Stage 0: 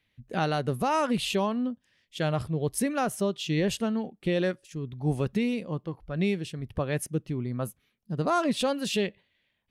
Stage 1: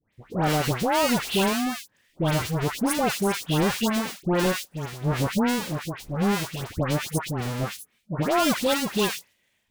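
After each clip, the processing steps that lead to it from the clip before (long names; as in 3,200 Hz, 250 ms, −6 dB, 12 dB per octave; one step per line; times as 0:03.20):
each half-wave held at its own peak
low-shelf EQ 110 Hz −6 dB
all-pass dispersion highs, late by 130 ms, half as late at 1,600 Hz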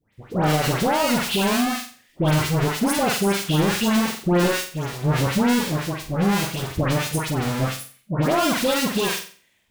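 brickwall limiter −17 dBFS, peak gain reduction 6 dB
on a send: flutter between parallel walls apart 7.8 metres, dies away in 0.41 s
on the sum: level +4.5 dB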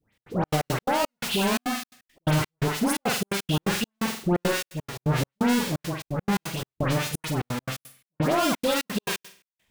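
gate pattern "xx.xx.x.x.xx..xx" 172 BPM −60 dB
level −3 dB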